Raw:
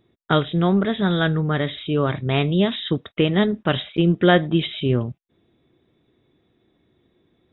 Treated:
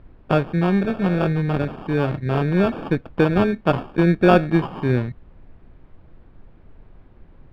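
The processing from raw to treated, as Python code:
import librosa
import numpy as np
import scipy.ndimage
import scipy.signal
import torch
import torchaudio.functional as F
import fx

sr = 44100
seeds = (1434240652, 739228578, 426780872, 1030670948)

y = fx.dynamic_eq(x, sr, hz=690.0, q=0.75, threshold_db=-27.0, ratio=4.0, max_db=5, at=(2.46, 4.71), fade=0.02)
y = fx.sample_hold(y, sr, seeds[0], rate_hz=2000.0, jitter_pct=0)
y = fx.tube_stage(y, sr, drive_db=4.0, bias=0.4)
y = fx.dmg_noise_colour(y, sr, seeds[1], colour='brown', level_db=-46.0)
y = fx.air_absorb(y, sr, metres=420.0)
y = y * librosa.db_to_amplitude(2.0)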